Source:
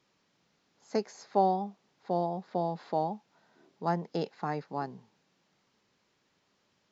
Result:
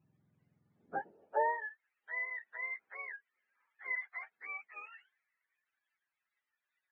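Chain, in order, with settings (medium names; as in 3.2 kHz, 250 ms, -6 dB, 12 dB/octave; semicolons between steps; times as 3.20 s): spectrum inverted on a logarithmic axis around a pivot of 590 Hz; high-pass sweep 150 Hz -> 1.8 kHz, 0.69–1.80 s; trim -6 dB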